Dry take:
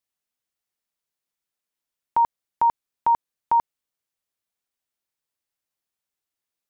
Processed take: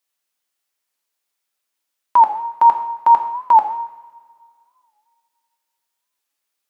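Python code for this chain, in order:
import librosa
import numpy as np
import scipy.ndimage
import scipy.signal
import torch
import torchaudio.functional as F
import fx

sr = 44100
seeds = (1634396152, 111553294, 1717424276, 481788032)

y = fx.highpass(x, sr, hz=560.0, slope=6)
y = fx.rev_double_slope(y, sr, seeds[0], early_s=0.84, late_s=2.5, knee_db=-19, drr_db=4.0)
y = fx.record_warp(y, sr, rpm=45.0, depth_cents=160.0)
y = F.gain(torch.from_numpy(y), 7.5).numpy()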